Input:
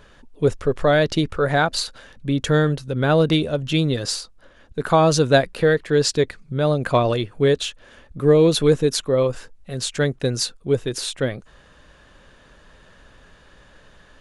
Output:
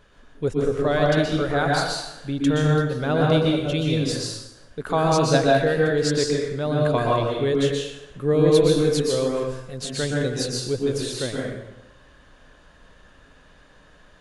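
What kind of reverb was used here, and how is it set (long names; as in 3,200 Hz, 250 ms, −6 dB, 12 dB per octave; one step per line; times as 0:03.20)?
dense smooth reverb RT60 0.95 s, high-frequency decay 0.75×, pre-delay 110 ms, DRR −2.5 dB
level −6.5 dB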